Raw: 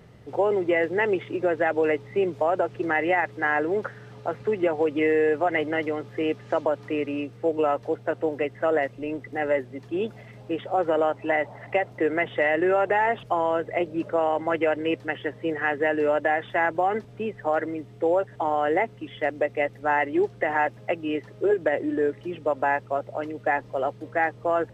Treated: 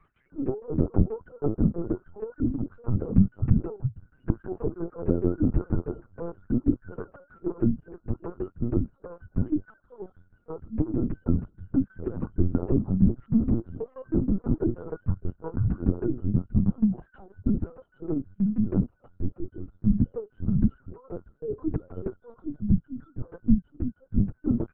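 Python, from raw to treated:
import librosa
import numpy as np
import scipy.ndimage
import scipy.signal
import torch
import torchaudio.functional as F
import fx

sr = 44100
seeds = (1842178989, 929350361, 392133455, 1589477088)

y = fx.octave_mirror(x, sr, pivot_hz=400.0)
y = fx.noise_reduce_blind(y, sr, reduce_db=18)
y = fx.peak_eq(y, sr, hz=140.0, db=8.0, octaves=0.45)
y = fx.tremolo_shape(y, sr, shape='saw_down', hz=6.3, depth_pct=100)
y = fx.fixed_phaser(y, sr, hz=1400.0, stages=4)
y = fx.formant_shift(y, sr, semitones=2)
y = fx.lpc_vocoder(y, sr, seeds[0], excitation='pitch_kept', order=8)
y = y * librosa.db_to_amplitude(6.0)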